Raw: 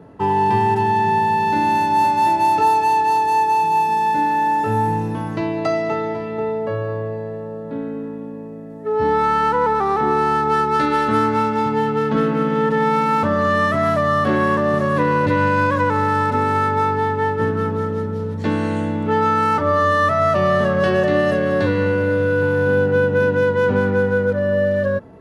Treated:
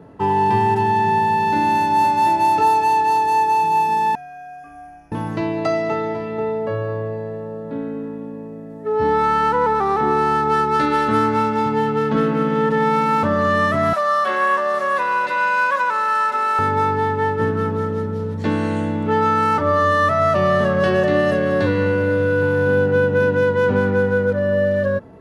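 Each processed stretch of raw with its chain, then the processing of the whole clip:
0:04.15–0:05.12: moving average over 11 samples + first difference + frequency shifter −150 Hz
0:13.93–0:16.59: high-pass filter 760 Hz + comb filter 5.3 ms, depth 68%
whole clip: no processing

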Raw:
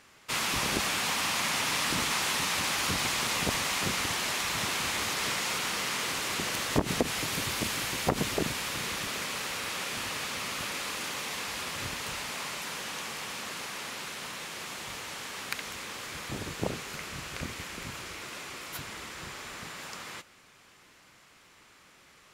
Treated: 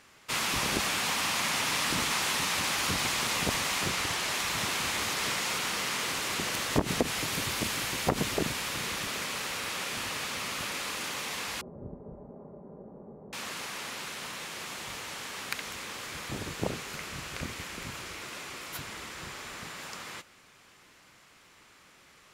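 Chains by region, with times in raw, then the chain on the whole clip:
0:03.84–0:04.31: parametric band 230 Hz −6 dB 0.31 octaves + highs frequency-modulated by the lows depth 0.19 ms
0:11.61–0:13.33: inverse Chebyshev low-pass filter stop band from 3,400 Hz, stop band 80 dB + comb filter 5 ms, depth 37%
whole clip: no processing

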